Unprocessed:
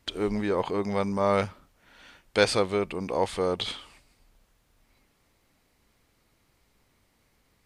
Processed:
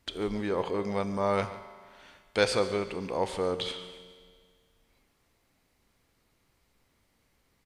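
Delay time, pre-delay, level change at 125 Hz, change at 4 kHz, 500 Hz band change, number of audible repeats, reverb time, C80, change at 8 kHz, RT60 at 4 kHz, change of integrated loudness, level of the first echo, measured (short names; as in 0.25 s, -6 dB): 0.143 s, 5 ms, -3.5 dB, -3.0 dB, -3.0 dB, 1, 1.9 s, 12.0 dB, -3.0 dB, 1.7 s, -3.0 dB, -17.5 dB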